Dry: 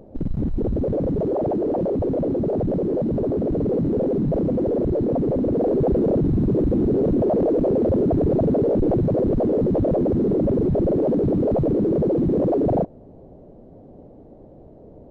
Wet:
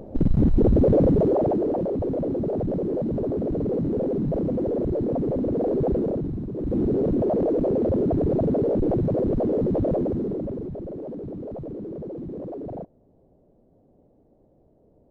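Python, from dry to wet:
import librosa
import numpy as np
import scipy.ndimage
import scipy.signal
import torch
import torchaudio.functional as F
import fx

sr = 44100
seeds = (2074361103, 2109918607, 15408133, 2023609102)

y = fx.gain(x, sr, db=fx.line((1.02, 5.0), (1.87, -3.5), (5.94, -3.5), (6.52, -13.0), (6.77, -3.0), (9.94, -3.0), (10.8, -14.5)))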